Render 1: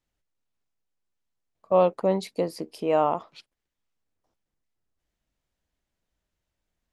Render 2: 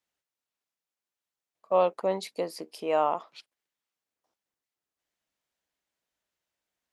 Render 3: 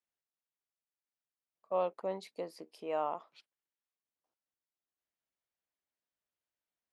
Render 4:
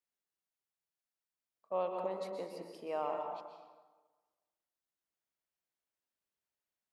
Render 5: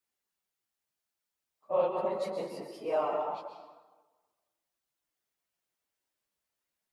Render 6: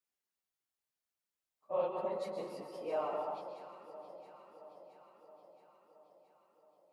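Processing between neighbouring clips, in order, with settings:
HPF 630 Hz 6 dB/oct
high shelf 4000 Hz -6.5 dB; gain -9 dB
plate-style reverb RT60 1.3 s, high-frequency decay 0.65×, pre-delay 0.11 s, DRR 2.5 dB; gain -3 dB
phase scrambler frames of 50 ms; gain +5.5 dB
echo with dull and thin repeats by turns 0.336 s, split 870 Hz, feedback 78%, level -11 dB; gain -6 dB

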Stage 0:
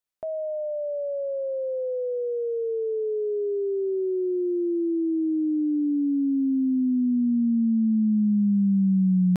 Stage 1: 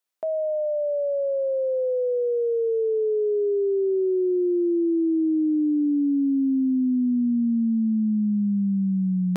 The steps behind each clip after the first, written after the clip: HPF 270 Hz 12 dB/oct; gain +4.5 dB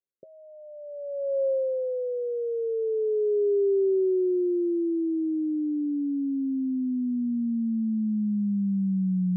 rippled Chebyshev low-pass 560 Hz, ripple 6 dB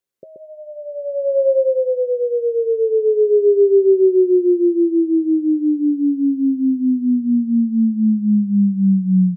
echo 0.129 s -4.5 dB; gain +9 dB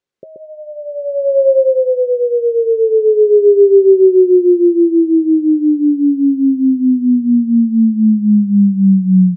air absorption 88 m; gain +5 dB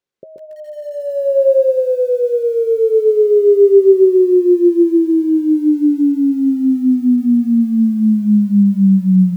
lo-fi delay 0.149 s, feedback 35%, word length 6-bit, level -14 dB; gain -1.5 dB

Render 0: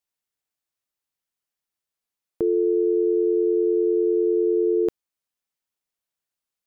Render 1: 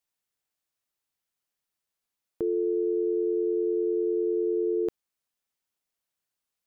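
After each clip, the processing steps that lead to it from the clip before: limiter -21.5 dBFS, peak gain reduction 7 dB; gain +1 dB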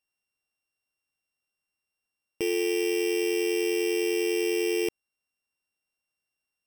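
sample sorter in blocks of 16 samples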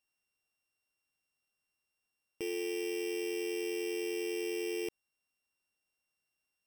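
limiter -30.5 dBFS, peak gain reduction 10 dB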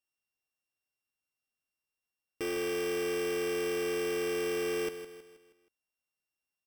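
sample leveller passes 3; feedback echo 0.159 s, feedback 46%, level -11 dB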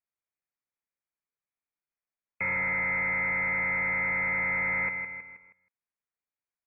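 sample leveller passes 2; inverted band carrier 2500 Hz; gain +2 dB

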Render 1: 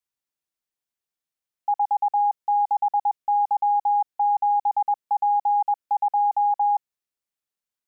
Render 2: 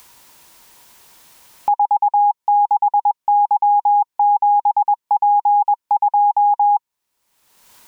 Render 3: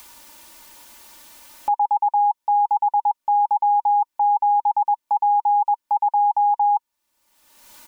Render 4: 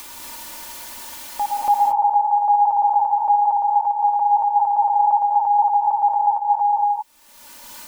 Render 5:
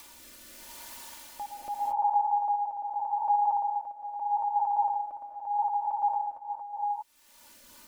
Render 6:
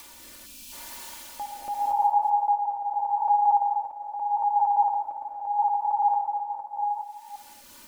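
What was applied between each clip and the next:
dynamic EQ 690 Hz, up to -3 dB, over -33 dBFS, Q 2.6; upward compressor, threshold -26 dBFS; bell 950 Hz +10.5 dB 0.24 oct; gain +5.5 dB
limiter -16.5 dBFS, peak gain reduction 8.5 dB; comb 3.4 ms, depth 78%
limiter -19 dBFS, peak gain reduction 6 dB; reverse echo 0.284 s -5 dB; non-linear reverb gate 0.26 s rising, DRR 0 dB; gain +6.5 dB
rotary speaker horn 0.8 Hz; gain -8 dB
reverse delay 0.23 s, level -11 dB; spectral gain 0.46–0.72, 280–2300 Hz -17 dB; non-linear reverb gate 0.27 s flat, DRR 9 dB; gain +3.5 dB

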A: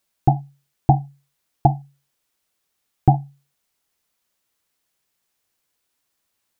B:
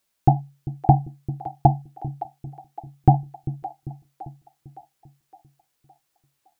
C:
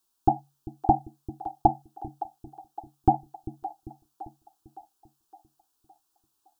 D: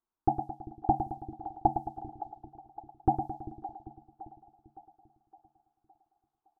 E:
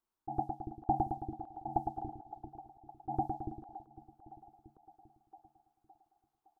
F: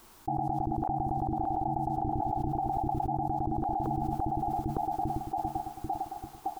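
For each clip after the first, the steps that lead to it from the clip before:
split-band echo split 440 Hz, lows 0.395 s, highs 0.563 s, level -13.5 dB
fixed phaser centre 560 Hz, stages 6
low-pass opened by the level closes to 1300 Hz, open at -24 dBFS; feedback echo 0.109 s, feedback 52%, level -8.5 dB; gain -5.5 dB
auto swell 0.128 s; gain +1 dB
low shelf 180 Hz +4.5 dB; fast leveller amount 100%; gain -5.5 dB

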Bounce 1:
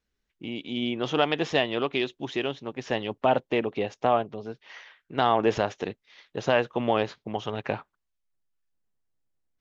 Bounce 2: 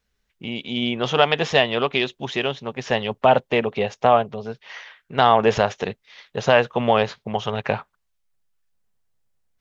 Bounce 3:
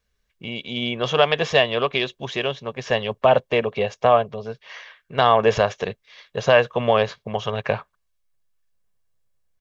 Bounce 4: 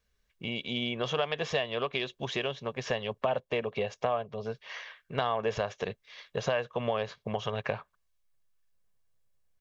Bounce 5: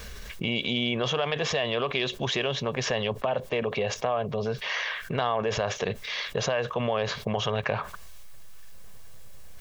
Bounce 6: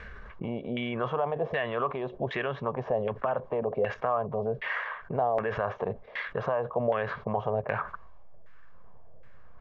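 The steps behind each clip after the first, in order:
bell 310 Hz -14.5 dB 0.33 oct; gain +7.5 dB
comb 1.8 ms, depth 36%; gain -1 dB
compressor 3:1, threshold -27 dBFS, peak gain reduction 13 dB; gain -2.5 dB
fast leveller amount 70%
LFO low-pass saw down 1.3 Hz 570–1900 Hz; gain -4 dB

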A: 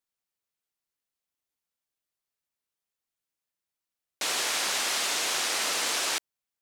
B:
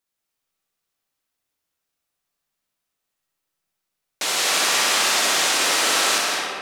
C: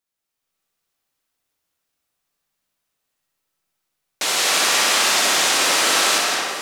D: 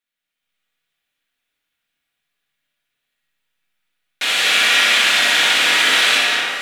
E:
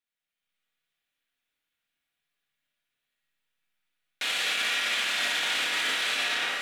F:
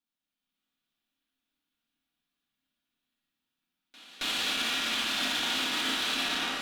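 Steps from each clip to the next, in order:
on a send: flutter echo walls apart 10.4 m, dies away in 0.67 s; on the sum: digital reverb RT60 2.6 s, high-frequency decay 0.45×, pre-delay 0.12 s, DRR -1 dB; gain +5 dB
AGC gain up to 5 dB; echo with dull and thin repeats by turns 0.434 s, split 1400 Hz, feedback 74%, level -11 dB; gain -2 dB
band shelf 2300 Hz +11 dB; shoebox room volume 300 m³, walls furnished, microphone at 1.8 m; gain -7 dB
limiter -12 dBFS, peak gain reduction 10 dB; gain -7 dB
ten-band EQ 125 Hz -7 dB, 250 Hz +11 dB, 500 Hz -9 dB, 2000 Hz -11 dB, 8000 Hz -6 dB, 16000 Hz -6 dB; pre-echo 0.272 s -20.5 dB; added harmonics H 8 -24 dB, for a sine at -22 dBFS; gain +4 dB

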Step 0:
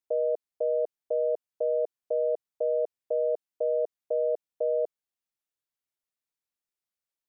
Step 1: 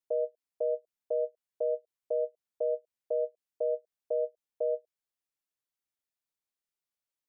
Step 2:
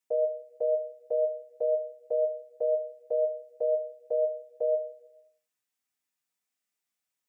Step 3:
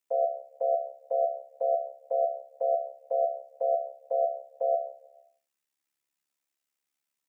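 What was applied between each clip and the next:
ending taper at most 520 dB/s; gain -2.5 dB
reverb RT60 1.0 s, pre-delay 3 ms, DRR 1.5 dB; gain +4.5 dB
AM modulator 70 Hz, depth 65%; frequency shift +55 Hz; gain +4 dB

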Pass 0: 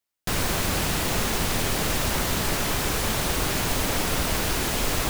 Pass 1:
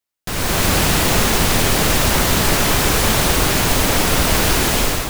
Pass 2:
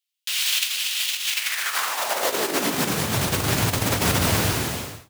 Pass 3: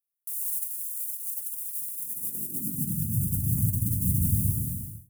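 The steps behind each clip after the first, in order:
AGC gain up to 11.5 dB
ending faded out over 1.22 s; negative-ratio compressor -18 dBFS, ratio -0.5; high-pass sweep 3000 Hz -> 100 Hz, 1.27–3.21; gain -4 dB
inverse Chebyshev band-stop 850–2800 Hz, stop band 80 dB

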